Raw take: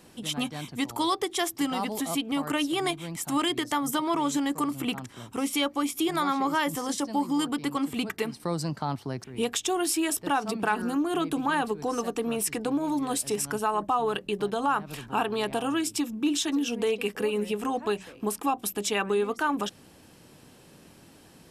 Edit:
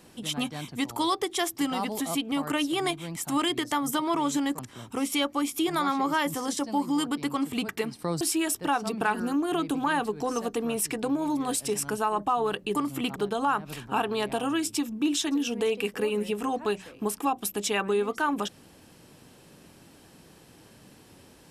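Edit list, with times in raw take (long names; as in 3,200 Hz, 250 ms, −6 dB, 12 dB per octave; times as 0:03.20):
0:04.59–0:05.00: move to 0:14.37
0:08.62–0:09.83: remove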